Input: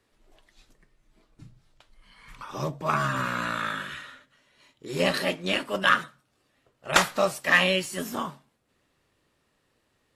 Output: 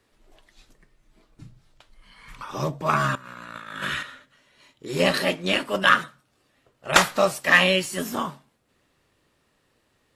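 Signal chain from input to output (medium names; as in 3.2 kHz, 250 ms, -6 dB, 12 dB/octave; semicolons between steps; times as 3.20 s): 3.15–4.03 s: compressor with a negative ratio -37 dBFS, ratio -0.5; trim +3.5 dB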